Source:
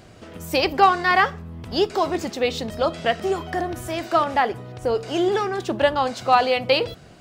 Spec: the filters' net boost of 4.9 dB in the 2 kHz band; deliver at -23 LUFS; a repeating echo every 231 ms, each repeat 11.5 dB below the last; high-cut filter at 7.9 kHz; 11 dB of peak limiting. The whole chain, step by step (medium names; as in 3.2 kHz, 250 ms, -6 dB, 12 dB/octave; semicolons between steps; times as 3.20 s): low-pass 7.9 kHz; peaking EQ 2 kHz +6 dB; peak limiter -12 dBFS; feedback delay 231 ms, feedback 27%, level -11.5 dB; trim +0.5 dB